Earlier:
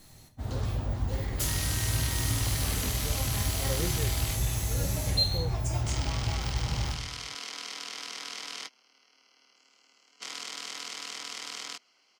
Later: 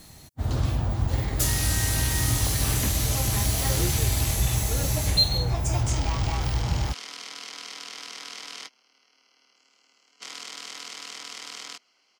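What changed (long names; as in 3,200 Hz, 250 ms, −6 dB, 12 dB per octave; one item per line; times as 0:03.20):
first sound +9.0 dB
reverb: off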